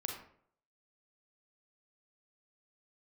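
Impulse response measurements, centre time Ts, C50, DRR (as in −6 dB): 34 ms, 4.0 dB, 1.0 dB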